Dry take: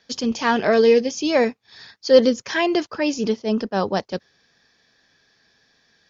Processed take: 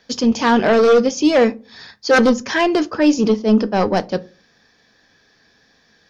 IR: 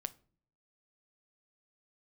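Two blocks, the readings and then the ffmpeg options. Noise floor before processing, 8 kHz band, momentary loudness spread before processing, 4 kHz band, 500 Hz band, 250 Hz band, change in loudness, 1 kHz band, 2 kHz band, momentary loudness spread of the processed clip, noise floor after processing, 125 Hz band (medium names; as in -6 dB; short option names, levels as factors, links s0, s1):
-63 dBFS, no reading, 10 LU, +2.0 dB, +2.5 dB, +6.5 dB, +4.0 dB, +5.5 dB, +5.0 dB, 8 LU, -58 dBFS, +6.5 dB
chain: -filter_complex "[0:a]equalizer=f=4200:t=o:w=2.6:g=-4,aeval=exprs='0.794*sin(PI/2*3.16*val(0)/0.794)':c=same[s0];[1:a]atrim=start_sample=2205,asetrate=74970,aresample=44100[s1];[s0][s1]afir=irnorm=-1:irlink=0"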